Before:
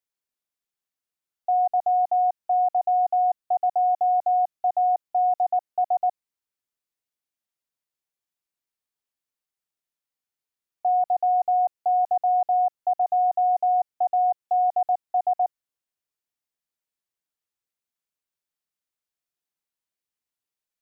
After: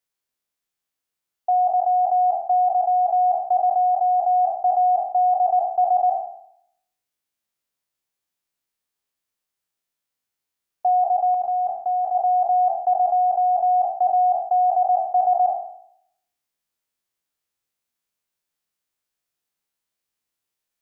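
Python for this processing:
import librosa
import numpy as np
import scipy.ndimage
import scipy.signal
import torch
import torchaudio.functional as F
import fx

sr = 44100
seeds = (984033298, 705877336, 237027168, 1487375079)

y = fx.spec_trails(x, sr, decay_s=0.7)
y = fx.rider(y, sr, range_db=10, speed_s=0.5)
y = fx.dynamic_eq(y, sr, hz=700.0, q=1.3, threshold_db=-35.0, ratio=4.0, max_db=-4, at=(11.34, 12.15))
y = F.gain(torch.from_numpy(y), 3.0).numpy()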